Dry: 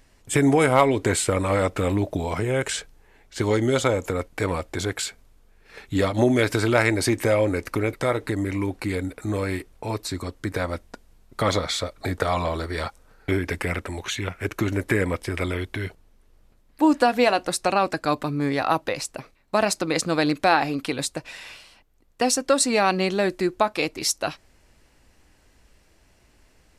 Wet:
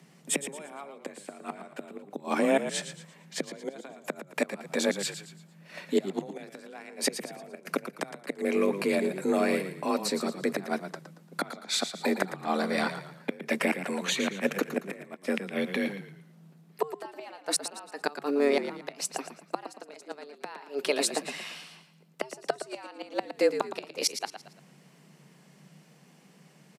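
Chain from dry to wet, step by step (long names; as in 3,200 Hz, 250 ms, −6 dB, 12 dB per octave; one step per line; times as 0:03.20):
gate with flip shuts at −13 dBFS, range −26 dB
echo with shifted repeats 114 ms, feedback 37%, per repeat −43 Hz, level −10 dB
frequency shifter +140 Hz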